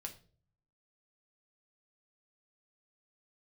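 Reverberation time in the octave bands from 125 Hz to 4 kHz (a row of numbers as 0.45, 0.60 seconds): 0.95, 0.75, 0.55, 0.35, 0.30, 0.35 seconds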